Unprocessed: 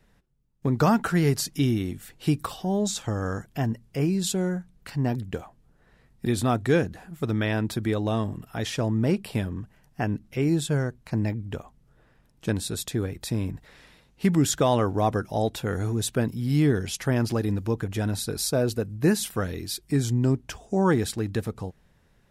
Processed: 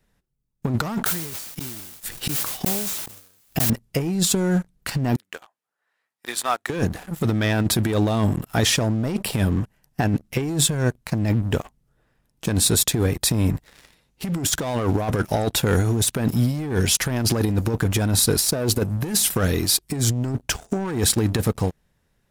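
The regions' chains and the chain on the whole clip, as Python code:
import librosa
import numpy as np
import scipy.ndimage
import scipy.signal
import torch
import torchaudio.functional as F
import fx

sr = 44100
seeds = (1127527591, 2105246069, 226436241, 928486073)

y = fx.chain(x, sr, fx.gate_flip(shuts_db=-23.0, range_db=-34),
    fx.quant_dither(seeds[0], bits=10, dither='triangular'),
    fx.sustainer(db_per_s=35.0), at=(1.04, 3.7))
y = fx.chain(y, sr, fx.highpass(hz=1100.0, slope=12),
    fx.high_shelf(hz=2300.0, db=-9.0), at=(5.16, 6.7))
y = fx.high_shelf(y, sr, hz=6000.0, db=7.5)
y = fx.leveller(y, sr, passes=3)
y = fx.over_compress(y, sr, threshold_db=-17.0, ratio=-0.5)
y = y * 10.0 ** (-2.5 / 20.0)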